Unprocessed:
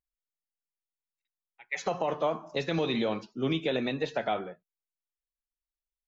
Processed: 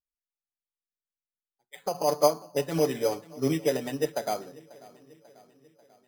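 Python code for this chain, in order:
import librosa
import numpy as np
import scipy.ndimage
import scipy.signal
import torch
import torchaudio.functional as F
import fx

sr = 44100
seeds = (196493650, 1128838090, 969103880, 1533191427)

y = fx.env_lowpass(x, sr, base_hz=380.0, full_db=-25.0)
y = fx.high_shelf(y, sr, hz=4600.0, db=-12.0)
y = fx.comb(y, sr, ms=6.9, depth=0.79, at=(1.94, 4.12))
y = fx.dynamic_eq(y, sr, hz=570.0, q=0.76, threshold_db=-37.0, ratio=4.0, max_db=5)
y = fx.echo_feedback(y, sr, ms=541, feedback_pct=56, wet_db=-18.0)
y = np.repeat(y[::8], 8)[:len(y)]
y = fx.upward_expand(y, sr, threshold_db=-31.0, expansion=1.5)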